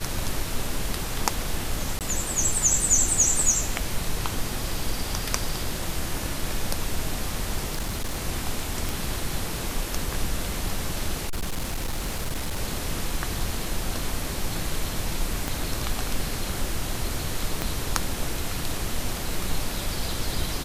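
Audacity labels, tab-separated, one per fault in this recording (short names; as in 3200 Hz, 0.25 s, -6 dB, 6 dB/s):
1.990000	2.010000	gap 18 ms
7.720000	8.250000	clipped -23.5 dBFS
8.890000	8.890000	pop
11.270000	12.600000	clipped -24 dBFS
15.480000	15.480000	pop
17.620000	17.620000	pop -10 dBFS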